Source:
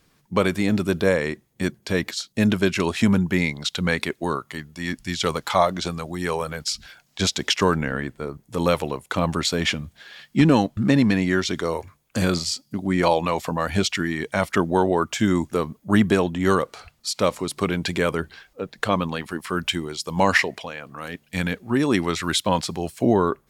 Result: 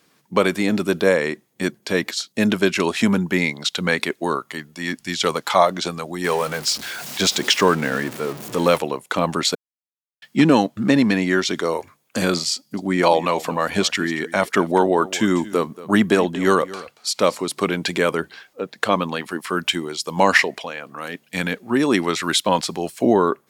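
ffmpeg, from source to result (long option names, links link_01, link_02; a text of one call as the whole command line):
ffmpeg -i in.wav -filter_complex "[0:a]asettb=1/sr,asplit=3[link_01][link_02][link_03];[link_01]atrim=end=6.244[link_04];[link_02]atrim=start=6.24:end=8.78,asetpts=PTS-STARTPTS,afade=type=in:duration=0.004:curve=qsin,afade=type=out:start_time=2.536:duration=0.004:curve=qsin,aeval=exprs='val(0)+0.5*0.0316*sgn(val(0))':channel_layout=same[link_05];[link_03]atrim=start=8.776[link_06];[link_04][link_05]acrossfade=duration=0.004:curve1=hsin:curve2=qsin[link_07];[link_07][link_06]acrossfade=duration=0.004:curve1=qsin:curve2=hsin,asettb=1/sr,asplit=3[link_08][link_09][link_10];[link_08]atrim=end=12.544[link_11];[link_09]atrim=start=12.54:end=17.38,asetpts=PTS-STARTPTS,afade=type=in:duration=0.004:curve=qsin,afade=type=out:start_time=4.836:duration=0.004:curve=qsin,aecho=1:1:231:0.133,atrim=end_sample=213444[link_12];[link_10]atrim=start=17.376[link_13];[link_11][link_12]acrossfade=duration=0.004:curve1=hsin:curve2=qsin[link_14];[link_14][link_13]acrossfade=duration=0.004:curve1=qsin:curve2=hsin,asplit=3[link_15][link_16][link_17];[link_15]atrim=end=9.55,asetpts=PTS-STARTPTS,afade=type=out:start_time=9.546:duration=0.004:curve=hsin[link_18];[link_16]atrim=start=9.55:end=10.22,asetpts=PTS-STARTPTS,volume=0[link_19];[link_17]atrim=start=10.22,asetpts=PTS-STARTPTS,afade=type=in:duration=0.004:curve=hsin[link_20];[link_18][link_19][link_20]concat=n=3:v=0:a=1,highpass=210,volume=3.5dB" out.wav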